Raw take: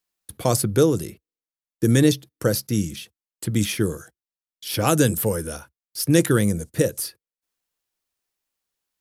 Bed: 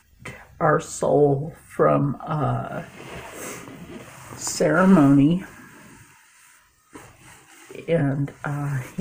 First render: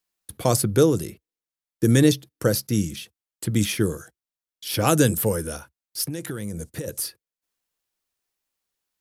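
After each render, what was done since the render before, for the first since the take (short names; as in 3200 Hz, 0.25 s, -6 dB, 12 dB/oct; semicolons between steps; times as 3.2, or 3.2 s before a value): 6.06–6.88 compressor 20:1, threshold -26 dBFS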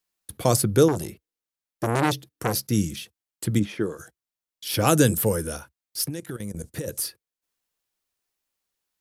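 0.88–2.62 core saturation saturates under 1400 Hz; 3.58–3.98 band-pass 270 Hz -> 1400 Hz, Q 0.52; 6.1–6.64 level quantiser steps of 16 dB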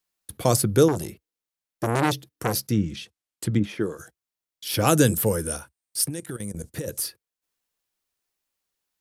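2.68–3.64 treble ducked by the level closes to 1900 Hz, closed at -17 dBFS; 5.46–6.53 bell 8800 Hz +12.5 dB 0.2 oct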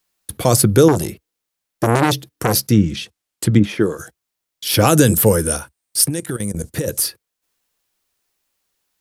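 maximiser +9.5 dB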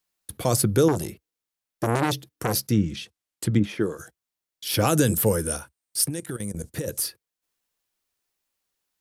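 gain -8 dB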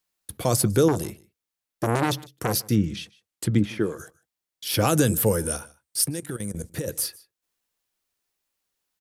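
echo 0.152 s -23 dB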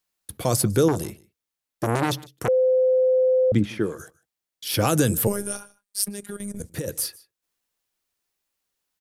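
2.48–3.52 bleep 514 Hz -15.5 dBFS; 5.27–6.6 robotiser 203 Hz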